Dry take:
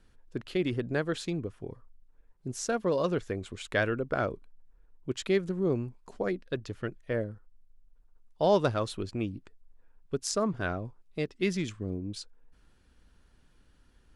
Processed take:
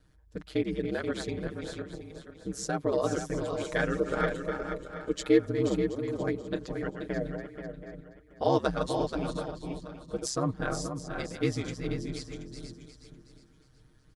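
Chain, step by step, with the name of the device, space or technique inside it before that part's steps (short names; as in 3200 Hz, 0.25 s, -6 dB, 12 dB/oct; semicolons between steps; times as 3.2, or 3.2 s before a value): regenerating reverse delay 0.364 s, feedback 44%, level -7.5 dB; 3.9–5.39 comb 2.3 ms, depth 68%; bell 2700 Hz -6 dB 0.33 oct; ring-modulated robot voice (ring modulator 66 Hz; comb 6.5 ms, depth 73%); echo 0.481 s -8 dB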